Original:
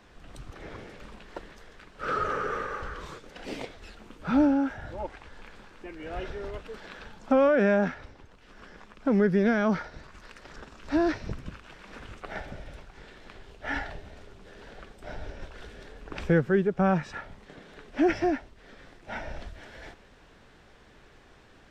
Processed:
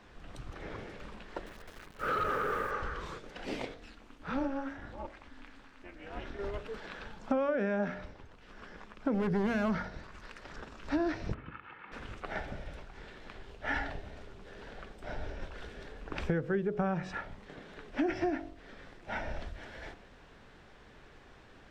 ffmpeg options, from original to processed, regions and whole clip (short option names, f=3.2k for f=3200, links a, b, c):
-filter_complex "[0:a]asettb=1/sr,asplit=3[a][b][c];[a]atrim=end=1.464[d];[b]atrim=start=1.46:end=2.71,asetpts=PTS-STARTPTS,afade=t=in:d=0.004:c=qsin,afade=t=out:st=1.246:d=0.004:c=qsin,asoftclip=type=hard:threshold=-25dB,bass=f=250:g=0,treble=f=4k:g=-7,acrusher=bits=9:dc=4:mix=0:aa=0.000001[e];[c]atrim=start=2.706[f];[d][e]acrossfade=d=0.004:c1=hsin:c2=qsin[g];[g][f]acrossfade=d=0.004:c1=qsin:c2=hsin,asettb=1/sr,asplit=3[h][i][j];[h]atrim=end=3.744[k];[i]atrim=start=3.74:end=6.39,asetpts=PTS-STARTPTS,afade=t=in:d=0.004:c=qsin,afade=t=out:st=2.646:d=0.004:c=qsin,equalizer=f=260:t=o:w=3:g=-6.5,tremolo=f=270:d=0.824[l];[j]atrim=start=6.386[m];[k][l]acrossfade=d=0.004:c1=hsin:c2=qsin[n];[n][m]acrossfade=d=0.004:c1=qsin:c2=hsin,asettb=1/sr,asplit=3[o][p][q];[o]atrim=end=9.144[r];[p]atrim=start=9.14:end=9.9,asetpts=PTS-STARTPTS,afade=t=in:d=0.004:c=qsin,afade=t=out:st=0.756:d=0.004:c=qsin,asoftclip=type=hard:threshold=-23dB,aeval=exprs='val(0)+0.00562*(sin(2*PI*50*n/s)+sin(2*PI*2*50*n/s)/2+sin(2*PI*3*50*n/s)/3+sin(2*PI*4*50*n/s)/4+sin(2*PI*5*50*n/s)/5)':c=same,bandreject=f=2.4k:w=25[s];[q]atrim=start=9.896[t];[r][s]acrossfade=d=0.004:c1=hsin:c2=qsin[u];[u][t]acrossfade=d=0.004:c1=qsin:c2=hsin,asettb=1/sr,asplit=3[v][w][x];[v]atrim=end=11.344[y];[w]atrim=start=11.34:end=11.92,asetpts=PTS-STARTPTS,afade=t=in:d=0.004:c=qsin,afade=t=out:st=0.576:d=0.004:c=qsin,highpass=140,equalizer=f=180:t=q:w=4:g=-5,equalizer=f=410:t=q:w=4:g=-10,equalizer=f=610:t=q:w=4:g=-9,equalizer=f=1.3k:t=q:w=4:g=4,lowpass=f=2.6k:w=0.5412,lowpass=f=2.6k:w=1.3066,aecho=1:1:2.3:0.42,atrim=end_sample=25578[z];[x]atrim=start=11.916[aa];[y][z]acrossfade=d=0.004:c1=hsin:c2=qsin[ab];[ab][aa]acrossfade=d=0.004:c1=qsin:c2=hsin,highshelf=f=5.6k:g=-6.5,bandreject=f=46.46:t=h:w=4,bandreject=f=92.92:t=h:w=4,bandreject=f=139.38:t=h:w=4,bandreject=f=185.84:t=h:w=4,bandreject=f=232.3:t=h:w=4,bandreject=f=278.76:t=h:w=4,bandreject=f=325.22:t=h:w=4,bandreject=f=371.68:t=h:w=4,bandreject=f=418.14:t=h:w=4,bandreject=f=464.6:t=h:w=4,bandreject=f=511.06:t=h:w=4,bandreject=f=557.52:t=h:w=4,bandreject=f=603.98:t=h:w=4,bandreject=f=650.44:t=h:w=4,bandreject=f=696.9:t=h:w=4,bandreject=f=743.36:t=h:w=4,acompressor=threshold=-27dB:ratio=10"